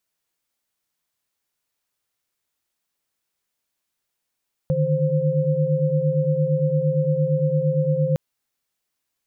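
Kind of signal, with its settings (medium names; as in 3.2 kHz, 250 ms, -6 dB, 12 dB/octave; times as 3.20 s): chord D3/D#3/C5 sine, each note -22 dBFS 3.46 s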